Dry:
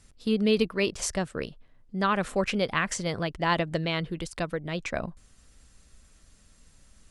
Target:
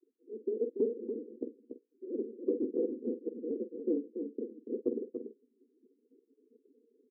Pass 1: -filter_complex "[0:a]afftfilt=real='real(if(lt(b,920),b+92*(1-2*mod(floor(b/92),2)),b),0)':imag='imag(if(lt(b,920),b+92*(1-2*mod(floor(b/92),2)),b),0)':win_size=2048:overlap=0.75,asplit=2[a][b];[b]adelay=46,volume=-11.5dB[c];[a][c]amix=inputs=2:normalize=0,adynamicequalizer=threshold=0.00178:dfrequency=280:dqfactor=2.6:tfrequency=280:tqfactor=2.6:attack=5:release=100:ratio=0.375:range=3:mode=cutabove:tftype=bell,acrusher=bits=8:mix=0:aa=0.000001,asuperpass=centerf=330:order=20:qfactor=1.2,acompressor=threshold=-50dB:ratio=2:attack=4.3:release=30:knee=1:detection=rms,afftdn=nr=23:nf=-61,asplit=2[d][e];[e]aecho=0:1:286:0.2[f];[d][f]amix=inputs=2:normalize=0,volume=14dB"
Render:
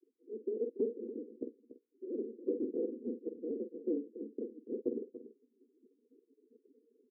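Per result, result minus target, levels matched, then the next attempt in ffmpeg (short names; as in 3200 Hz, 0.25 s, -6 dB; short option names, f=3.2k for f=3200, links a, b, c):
echo-to-direct -6 dB; compressor: peak gain reduction +3 dB
-filter_complex "[0:a]afftfilt=real='real(if(lt(b,920),b+92*(1-2*mod(floor(b/92),2)),b),0)':imag='imag(if(lt(b,920),b+92*(1-2*mod(floor(b/92),2)),b),0)':win_size=2048:overlap=0.75,asplit=2[a][b];[b]adelay=46,volume=-11.5dB[c];[a][c]amix=inputs=2:normalize=0,adynamicequalizer=threshold=0.00178:dfrequency=280:dqfactor=2.6:tfrequency=280:tqfactor=2.6:attack=5:release=100:ratio=0.375:range=3:mode=cutabove:tftype=bell,acrusher=bits=8:mix=0:aa=0.000001,asuperpass=centerf=330:order=20:qfactor=1.2,acompressor=threshold=-50dB:ratio=2:attack=4.3:release=30:knee=1:detection=rms,afftdn=nr=23:nf=-61,asplit=2[d][e];[e]aecho=0:1:286:0.398[f];[d][f]amix=inputs=2:normalize=0,volume=14dB"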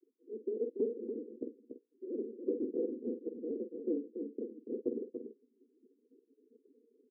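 compressor: peak gain reduction +3 dB
-filter_complex "[0:a]afftfilt=real='real(if(lt(b,920),b+92*(1-2*mod(floor(b/92),2)),b),0)':imag='imag(if(lt(b,920),b+92*(1-2*mod(floor(b/92),2)),b),0)':win_size=2048:overlap=0.75,asplit=2[a][b];[b]adelay=46,volume=-11.5dB[c];[a][c]amix=inputs=2:normalize=0,adynamicequalizer=threshold=0.00178:dfrequency=280:dqfactor=2.6:tfrequency=280:tqfactor=2.6:attack=5:release=100:ratio=0.375:range=3:mode=cutabove:tftype=bell,acrusher=bits=8:mix=0:aa=0.000001,asuperpass=centerf=330:order=20:qfactor=1.2,acompressor=threshold=-44dB:ratio=2:attack=4.3:release=30:knee=1:detection=rms,afftdn=nr=23:nf=-61,asplit=2[d][e];[e]aecho=0:1:286:0.398[f];[d][f]amix=inputs=2:normalize=0,volume=14dB"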